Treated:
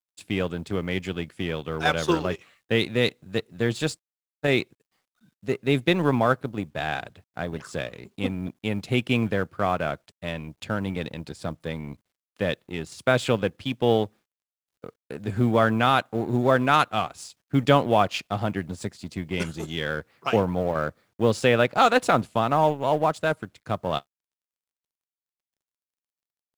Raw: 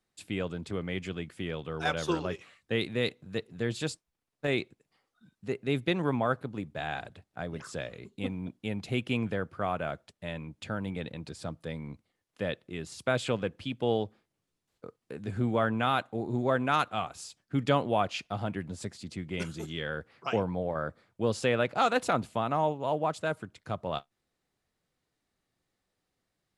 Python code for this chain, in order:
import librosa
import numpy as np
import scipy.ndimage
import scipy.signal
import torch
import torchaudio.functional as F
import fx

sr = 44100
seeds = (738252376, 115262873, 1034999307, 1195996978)

y = fx.law_mismatch(x, sr, coded='A')
y = y * 10.0 ** (8.0 / 20.0)